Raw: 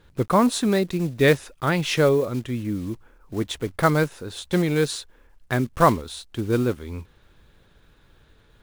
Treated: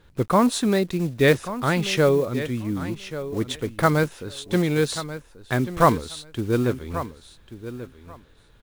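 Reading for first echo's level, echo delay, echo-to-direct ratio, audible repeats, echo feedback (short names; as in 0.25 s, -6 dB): -13.0 dB, 1.136 s, -13.0 dB, 2, 16%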